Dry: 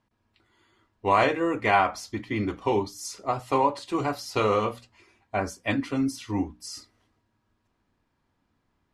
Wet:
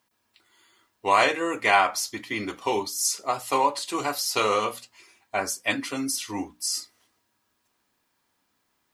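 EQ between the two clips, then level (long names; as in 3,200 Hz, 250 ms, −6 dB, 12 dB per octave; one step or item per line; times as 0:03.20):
RIAA equalisation recording
+1.5 dB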